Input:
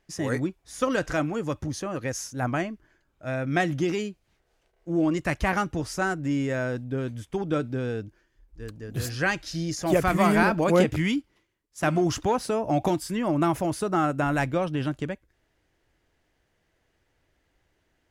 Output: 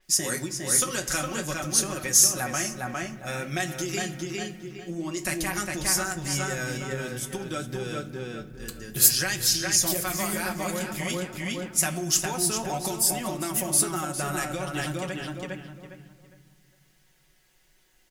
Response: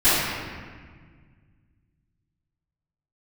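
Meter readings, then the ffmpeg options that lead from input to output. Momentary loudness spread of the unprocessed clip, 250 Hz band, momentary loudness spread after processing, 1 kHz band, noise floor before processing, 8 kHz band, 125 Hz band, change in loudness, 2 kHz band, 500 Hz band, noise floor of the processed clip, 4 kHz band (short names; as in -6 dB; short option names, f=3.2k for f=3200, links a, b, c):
12 LU, -6.5 dB, 14 LU, -5.0 dB, -72 dBFS, +17.0 dB, -4.5 dB, +1.0 dB, -1.0 dB, -6.5 dB, -63 dBFS, +9.0 dB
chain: -filter_complex "[0:a]aecho=1:1:5.4:0.65,asplit=2[a][b];[b]adelay=407,lowpass=f=3.7k:p=1,volume=-4dB,asplit=2[c][d];[d]adelay=407,lowpass=f=3.7k:p=1,volume=0.27,asplit=2[e][f];[f]adelay=407,lowpass=f=3.7k:p=1,volume=0.27,asplit=2[g][h];[h]adelay=407,lowpass=f=3.7k:p=1,volume=0.27[i];[a][c][e][g][i]amix=inputs=5:normalize=0,acompressor=threshold=-25dB:ratio=10,crystalizer=i=7:c=0,flanger=delay=8.8:depth=8.5:regen=-64:speed=0.52:shape=triangular,asplit=2[j][k];[1:a]atrim=start_sample=2205,lowshelf=f=200:g=11[l];[k][l]afir=irnorm=-1:irlink=0,volume=-35dB[m];[j][m]amix=inputs=2:normalize=0,adynamicequalizer=threshold=0.00794:dfrequency=5500:dqfactor=0.7:tfrequency=5500:tqfactor=0.7:attack=5:release=100:ratio=0.375:range=3.5:mode=boostabove:tftype=highshelf"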